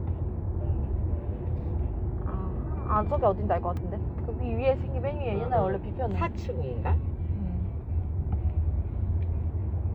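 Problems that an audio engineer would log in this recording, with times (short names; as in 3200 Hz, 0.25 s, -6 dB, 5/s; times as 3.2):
3.77 gap 2.1 ms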